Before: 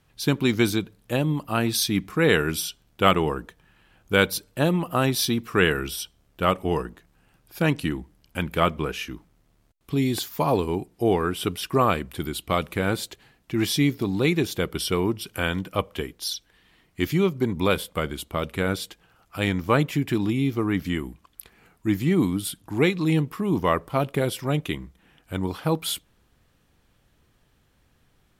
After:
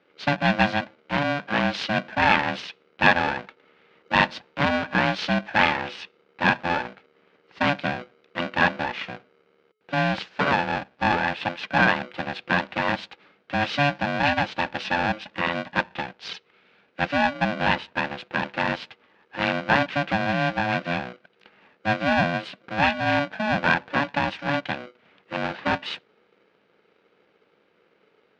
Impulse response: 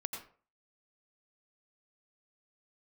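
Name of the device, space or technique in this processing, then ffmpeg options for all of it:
ring modulator pedal into a guitar cabinet: -af "lowpass=8.7k,aeval=exprs='val(0)*sgn(sin(2*PI*430*n/s))':c=same,highpass=110,equalizer=f=190:t=q:w=4:g=9,equalizer=f=460:t=q:w=4:g=5,equalizer=f=860:t=q:w=4:g=4,equalizer=f=1.6k:t=q:w=4:g=8,equalizer=f=2.5k:t=q:w=4:g=6,lowpass=f=4.3k:w=0.5412,lowpass=f=4.3k:w=1.3066,volume=-3dB"

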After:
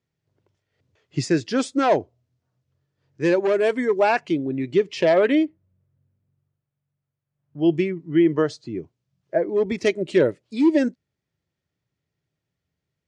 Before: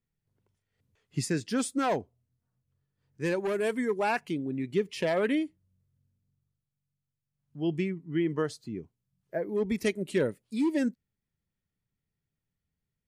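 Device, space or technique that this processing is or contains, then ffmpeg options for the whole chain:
car door speaker: -filter_complex "[0:a]highpass=84,equalizer=f=210:t=q:w=4:g=-7,equalizer=f=340:t=q:w=4:g=5,equalizer=f=610:t=q:w=4:g=6,lowpass=f=6.6k:w=0.5412,lowpass=f=6.6k:w=1.3066,asettb=1/sr,asplit=3[a][b][c];[a]atrim=end=5.454[d];[b]atrim=start=5.45:end=7.59,asetpts=PTS-STARTPTS,afade=t=in:d=0.004:c=qsin,afade=t=out:st=2.136:d=0.004:c=qsin,lowpass=2k[e];[c]atrim=start=7.586[f];[d][e]acrossfade=d=0.004:c1=hsin:c2=qsin[g];[g][f]acrossfade=d=0.004:c1=qsin:c2=hsin,volume=7dB"

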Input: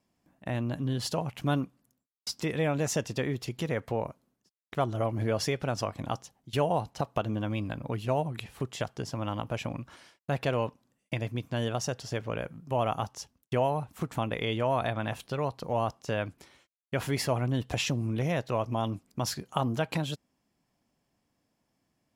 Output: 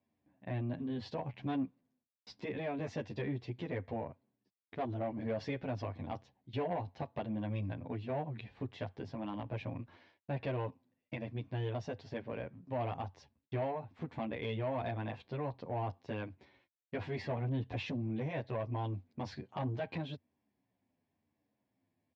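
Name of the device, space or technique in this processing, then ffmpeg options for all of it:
barber-pole flanger into a guitar amplifier: -filter_complex "[0:a]asplit=2[a][b];[b]adelay=9.9,afreqshift=-0.99[c];[a][c]amix=inputs=2:normalize=1,asoftclip=type=tanh:threshold=-26.5dB,highpass=79,equalizer=f=93:t=q:w=4:g=7,equalizer=f=160:t=q:w=4:g=-4,equalizer=f=260:t=q:w=4:g=3,equalizer=f=1.3k:t=q:w=4:g=-10,equalizer=f=3k:t=q:w=4:g=-6,lowpass=f=3.6k:w=0.5412,lowpass=f=3.6k:w=1.3066,volume=-2.5dB"

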